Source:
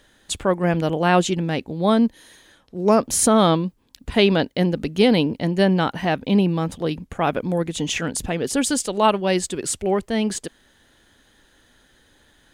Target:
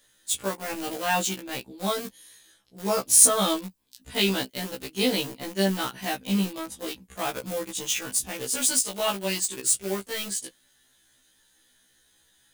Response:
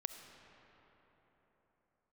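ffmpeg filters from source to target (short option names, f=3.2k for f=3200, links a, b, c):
-filter_complex "[0:a]flanger=delay=8.4:depth=1.1:regen=-45:speed=0.2:shape=sinusoidal,asplit=2[a][b];[b]aeval=exprs='val(0)*gte(abs(val(0)),0.0668)':c=same,volume=-5dB[c];[a][c]amix=inputs=2:normalize=0,crystalizer=i=5:c=0,afftfilt=real='re*1.73*eq(mod(b,3),0)':imag='im*1.73*eq(mod(b,3),0)':win_size=2048:overlap=0.75,volume=-8dB"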